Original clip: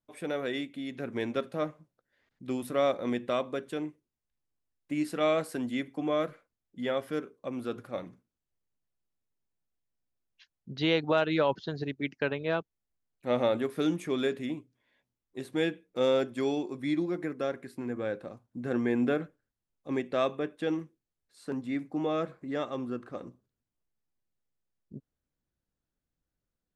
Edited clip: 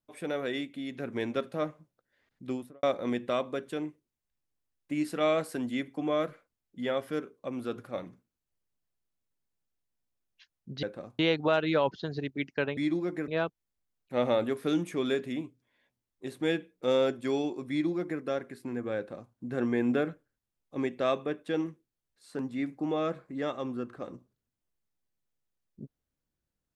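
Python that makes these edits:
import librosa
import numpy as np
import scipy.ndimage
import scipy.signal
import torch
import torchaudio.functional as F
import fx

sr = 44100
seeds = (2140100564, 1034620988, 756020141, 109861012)

y = fx.studio_fade_out(x, sr, start_s=2.44, length_s=0.39)
y = fx.edit(y, sr, fx.duplicate(start_s=16.83, length_s=0.51, to_s=12.41),
    fx.duplicate(start_s=18.1, length_s=0.36, to_s=10.83), tone=tone)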